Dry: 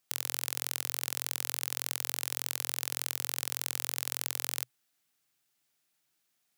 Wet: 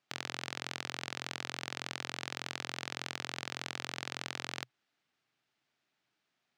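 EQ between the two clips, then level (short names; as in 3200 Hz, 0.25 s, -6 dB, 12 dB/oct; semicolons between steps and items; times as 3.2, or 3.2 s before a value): air absorption 140 m; low shelf 71 Hz -7.5 dB; high shelf 5900 Hz -6.5 dB; +4.0 dB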